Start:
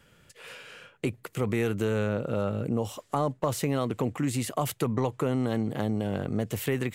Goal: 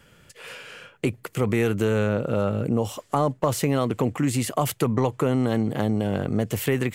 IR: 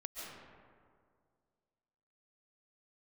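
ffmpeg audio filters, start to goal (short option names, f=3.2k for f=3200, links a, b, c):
-af "bandreject=f=3.8k:w=24,volume=5dB"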